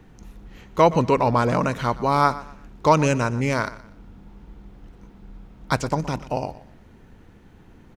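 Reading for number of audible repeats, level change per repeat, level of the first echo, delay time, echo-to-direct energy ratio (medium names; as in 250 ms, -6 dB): 2, -10.5 dB, -17.0 dB, 121 ms, -16.5 dB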